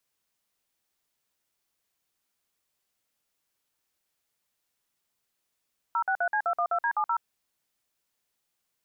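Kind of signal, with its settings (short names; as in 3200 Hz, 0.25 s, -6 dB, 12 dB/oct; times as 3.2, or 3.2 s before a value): DTMF "063C212D70", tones 75 ms, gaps 52 ms, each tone -26 dBFS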